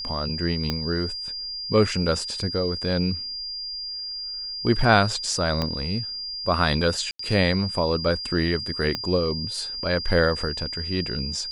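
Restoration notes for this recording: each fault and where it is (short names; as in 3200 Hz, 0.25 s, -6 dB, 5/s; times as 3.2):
tone 4800 Hz -30 dBFS
0.7 pop -11 dBFS
5.62 pop -12 dBFS
7.11–7.19 gap 84 ms
8.95 pop -12 dBFS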